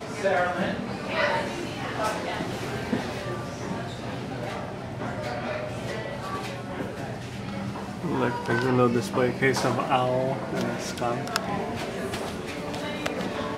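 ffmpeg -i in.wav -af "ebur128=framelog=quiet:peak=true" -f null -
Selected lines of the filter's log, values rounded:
Integrated loudness:
  I:         -28.5 LUFS
  Threshold: -38.5 LUFS
Loudness range:
  LRA:         7.5 LU
  Threshold: -48.5 LUFS
  LRA low:   -32.7 LUFS
  LRA high:  -25.2 LUFS
True peak:
  Peak:       -3.2 dBFS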